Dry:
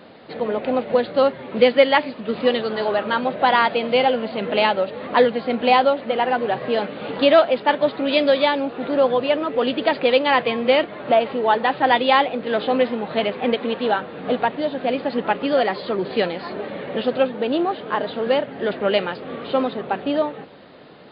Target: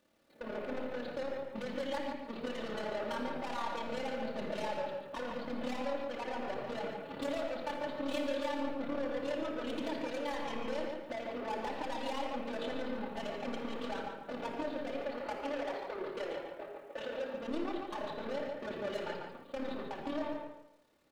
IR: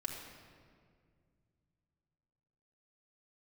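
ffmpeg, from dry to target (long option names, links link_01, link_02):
-filter_complex "[0:a]agate=range=-27dB:threshold=-26dB:ratio=16:detection=peak,asettb=1/sr,asplit=3[link_01][link_02][link_03];[link_01]atrim=end=14.934[link_04];[link_02]atrim=start=14.93:end=17.34,asetpts=PTS-STARTPTS,afade=type=in:duration=0.004:curve=qsin,afade=type=out:start_time=2.406:duration=0.004:curve=qsin,acrossover=split=320 3100:gain=0.0708 1 0.251[link_05][link_06][link_07];[link_05][link_06][link_07]amix=inputs=3:normalize=0[link_08];[link_03]atrim=start=17.336[link_09];[link_04][link_08]acrossfade=duration=0.004:curve1=hsin:curve2=qsin[link_10];[link_10][link_09]acrossfade=duration=0.004:curve1=qsin:curve2=hsin,acompressor=threshold=-31dB:ratio=3,asoftclip=type=tanh:threshold=-34dB,acrusher=bits=11:mix=0:aa=0.000001,tremolo=f=36:d=0.621,asplit=2[link_11][link_12];[link_12]adelay=146,lowpass=frequency=3300:poles=1,volume=-5dB,asplit=2[link_13][link_14];[link_14]adelay=146,lowpass=frequency=3300:poles=1,volume=0.29,asplit=2[link_15][link_16];[link_16]adelay=146,lowpass=frequency=3300:poles=1,volume=0.29,asplit=2[link_17][link_18];[link_18]adelay=146,lowpass=frequency=3300:poles=1,volume=0.29[link_19];[link_11][link_13][link_15][link_17][link_19]amix=inputs=5:normalize=0[link_20];[1:a]atrim=start_sample=2205,afade=type=out:start_time=0.21:duration=0.01,atrim=end_sample=9702[link_21];[link_20][link_21]afir=irnorm=-1:irlink=0,volume=1dB"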